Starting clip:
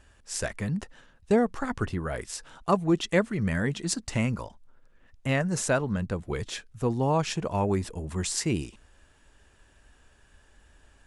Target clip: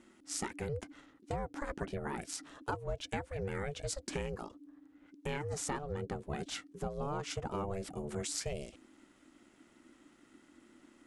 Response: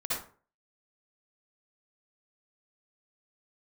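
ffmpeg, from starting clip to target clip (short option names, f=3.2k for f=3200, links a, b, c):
-af "bandreject=f=390:w=12,acompressor=threshold=-30dB:ratio=6,aeval=exprs='val(0)*sin(2*PI*290*n/s)':c=same,volume=-1.5dB"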